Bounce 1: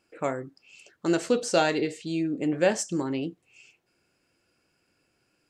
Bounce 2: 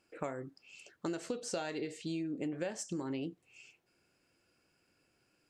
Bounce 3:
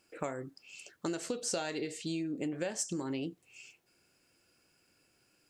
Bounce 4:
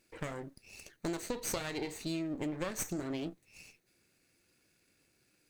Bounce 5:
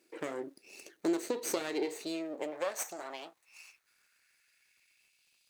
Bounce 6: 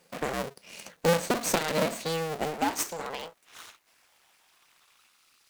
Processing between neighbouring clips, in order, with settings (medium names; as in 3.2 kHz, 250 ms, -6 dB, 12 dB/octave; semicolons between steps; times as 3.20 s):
compression 12:1, threshold -31 dBFS, peak gain reduction 15 dB; trim -3 dB
treble shelf 4.5 kHz +8 dB; trim +1.5 dB
comb filter that takes the minimum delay 0.47 ms
high-pass sweep 340 Hz -> 3.2 kHz, 1.64–5.46 s; crackle 110 per s -61 dBFS
cycle switcher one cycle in 2, inverted; trim +7 dB